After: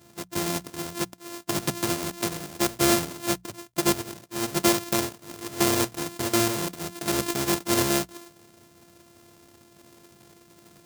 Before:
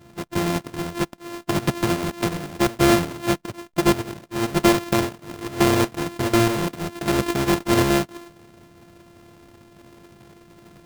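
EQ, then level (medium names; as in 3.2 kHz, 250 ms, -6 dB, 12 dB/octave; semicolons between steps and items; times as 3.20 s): high-pass 58 Hz; tone controls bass -2 dB, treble +10 dB; hum notches 60/120/180 Hz; -5.5 dB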